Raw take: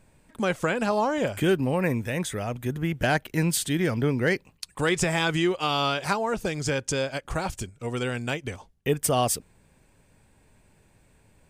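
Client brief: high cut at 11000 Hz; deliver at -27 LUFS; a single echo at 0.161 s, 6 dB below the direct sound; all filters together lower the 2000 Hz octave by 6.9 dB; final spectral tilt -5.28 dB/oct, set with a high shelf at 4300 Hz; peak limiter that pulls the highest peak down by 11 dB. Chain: LPF 11000 Hz; bell 2000 Hz -8.5 dB; high shelf 4300 Hz -5 dB; limiter -23.5 dBFS; echo 0.161 s -6 dB; gain +5.5 dB

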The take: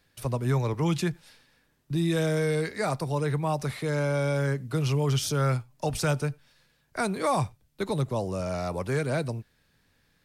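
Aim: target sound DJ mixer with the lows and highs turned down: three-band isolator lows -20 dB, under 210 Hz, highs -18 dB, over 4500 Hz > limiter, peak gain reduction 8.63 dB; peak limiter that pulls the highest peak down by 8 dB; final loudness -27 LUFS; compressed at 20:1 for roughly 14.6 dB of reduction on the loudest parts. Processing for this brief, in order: compressor 20:1, threshold -36 dBFS; limiter -33 dBFS; three-band isolator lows -20 dB, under 210 Hz, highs -18 dB, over 4500 Hz; gain +22.5 dB; limiter -18 dBFS

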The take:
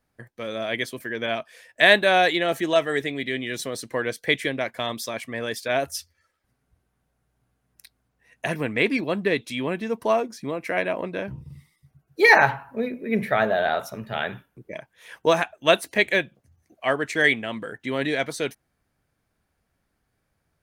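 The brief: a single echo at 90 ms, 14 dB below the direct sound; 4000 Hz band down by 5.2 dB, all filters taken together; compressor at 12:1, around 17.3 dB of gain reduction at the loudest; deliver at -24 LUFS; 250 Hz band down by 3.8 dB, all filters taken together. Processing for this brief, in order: bell 250 Hz -5 dB; bell 4000 Hz -6.5 dB; compressor 12:1, threshold -29 dBFS; echo 90 ms -14 dB; gain +10.5 dB

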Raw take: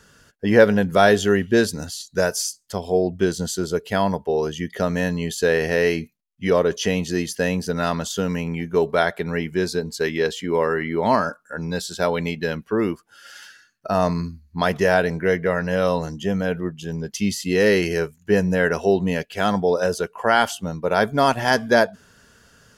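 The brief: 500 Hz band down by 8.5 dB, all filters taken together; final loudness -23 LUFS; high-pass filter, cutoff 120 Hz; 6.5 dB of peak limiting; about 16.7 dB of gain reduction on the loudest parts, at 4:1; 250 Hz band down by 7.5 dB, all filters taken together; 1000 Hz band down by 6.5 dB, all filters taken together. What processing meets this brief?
HPF 120 Hz; bell 250 Hz -8.5 dB; bell 500 Hz -6.5 dB; bell 1000 Hz -6 dB; compressor 4:1, threshold -36 dBFS; gain +17 dB; limiter -10.5 dBFS

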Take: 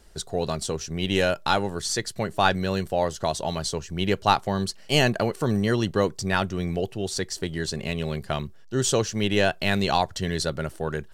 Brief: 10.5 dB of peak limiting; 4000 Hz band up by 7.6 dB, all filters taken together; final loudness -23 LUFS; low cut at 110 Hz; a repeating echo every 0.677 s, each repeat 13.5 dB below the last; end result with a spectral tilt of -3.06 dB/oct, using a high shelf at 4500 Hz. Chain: HPF 110 Hz; bell 4000 Hz +6 dB; high shelf 4500 Hz +7 dB; limiter -11.5 dBFS; feedback echo 0.677 s, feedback 21%, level -13.5 dB; gain +2 dB

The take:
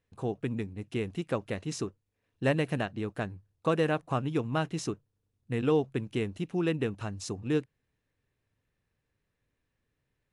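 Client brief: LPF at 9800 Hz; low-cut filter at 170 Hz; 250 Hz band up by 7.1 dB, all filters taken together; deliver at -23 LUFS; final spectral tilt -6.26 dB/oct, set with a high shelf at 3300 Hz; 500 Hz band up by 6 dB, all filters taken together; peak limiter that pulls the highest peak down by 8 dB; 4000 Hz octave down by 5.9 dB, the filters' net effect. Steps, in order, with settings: HPF 170 Hz; LPF 9800 Hz; bell 250 Hz +9 dB; bell 500 Hz +4.5 dB; high shelf 3300 Hz -3.5 dB; bell 4000 Hz -6.5 dB; gain +6.5 dB; limiter -10 dBFS

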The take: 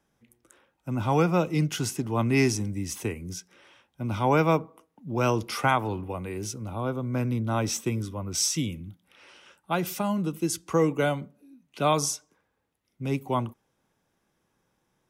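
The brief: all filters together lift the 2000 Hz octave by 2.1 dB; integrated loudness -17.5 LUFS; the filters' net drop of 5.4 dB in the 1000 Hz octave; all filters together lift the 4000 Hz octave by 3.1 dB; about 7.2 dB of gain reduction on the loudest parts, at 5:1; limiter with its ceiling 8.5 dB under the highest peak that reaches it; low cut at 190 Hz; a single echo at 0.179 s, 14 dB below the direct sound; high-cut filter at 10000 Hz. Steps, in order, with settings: HPF 190 Hz; LPF 10000 Hz; bell 1000 Hz -8.5 dB; bell 2000 Hz +4.5 dB; bell 4000 Hz +4 dB; compressor 5:1, threshold -27 dBFS; limiter -24 dBFS; echo 0.179 s -14 dB; gain +17 dB

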